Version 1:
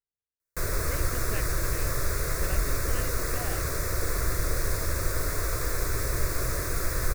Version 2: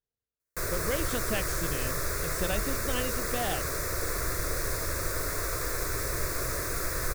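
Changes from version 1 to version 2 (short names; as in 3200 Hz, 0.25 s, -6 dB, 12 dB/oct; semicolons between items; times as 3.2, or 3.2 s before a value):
speech: remove ladder low-pass 2500 Hz, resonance 50%; background: add low shelf 170 Hz -7 dB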